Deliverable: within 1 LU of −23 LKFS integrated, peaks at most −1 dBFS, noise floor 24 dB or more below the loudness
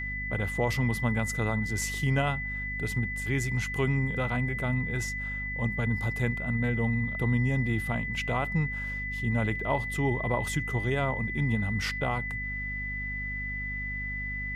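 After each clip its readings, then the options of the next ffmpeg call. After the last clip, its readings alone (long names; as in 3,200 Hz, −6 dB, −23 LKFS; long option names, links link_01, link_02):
mains hum 50 Hz; hum harmonics up to 250 Hz; level of the hum −35 dBFS; interfering tone 2,000 Hz; level of the tone −33 dBFS; integrated loudness −29.5 LKFS; sample peak −13.5 dBFS; target loudness −23.0 LKFS
→ -af "bandreject=frequency=50:width_type=h:width=6,bandreject=frequency=100:width_type=h:width=6,bandreject=frequency=150:width_type=h:width=6,bandreject=frequency=200:width_type=h:width=6,bandreject=frequency=250:width_type=h:width=6"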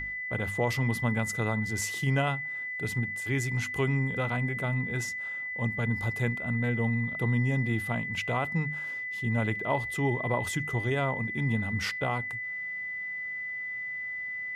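mains hum none found; interfering tone 2,000 Hz; level of the tone −33 dBFS
→ -af "bandreject=frequency=2000:width=30"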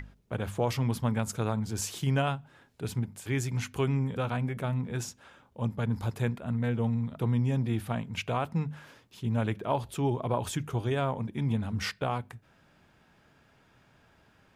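interfering tone none found; integrated loudness −31.5 LKFS; sample peak −14.5 dBFS; target loudness −23.0 LKFS
→ -af "volume=8.5dB"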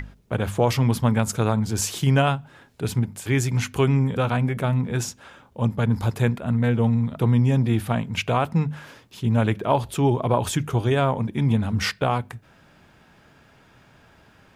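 integrated loudness −23.0 LKFS; sample peak −6.0 dBFS; background noise floor −55 dBFS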